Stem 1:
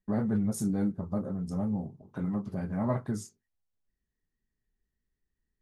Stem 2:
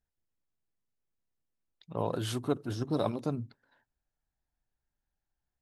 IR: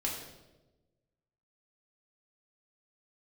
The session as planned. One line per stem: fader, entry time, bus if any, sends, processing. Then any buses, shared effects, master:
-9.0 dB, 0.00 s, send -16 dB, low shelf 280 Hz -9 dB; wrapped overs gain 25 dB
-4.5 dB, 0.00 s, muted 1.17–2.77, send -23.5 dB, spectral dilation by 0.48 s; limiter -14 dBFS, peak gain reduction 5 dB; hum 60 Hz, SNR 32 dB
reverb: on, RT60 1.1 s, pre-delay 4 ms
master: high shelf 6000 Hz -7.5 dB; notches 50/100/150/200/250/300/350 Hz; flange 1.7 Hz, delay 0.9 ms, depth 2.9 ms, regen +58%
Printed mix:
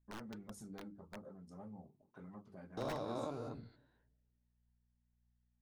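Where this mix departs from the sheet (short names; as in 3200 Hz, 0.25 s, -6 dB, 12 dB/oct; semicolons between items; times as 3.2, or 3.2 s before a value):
stem 1: send off; stem 2 -4.5 dB -> -12.0 dB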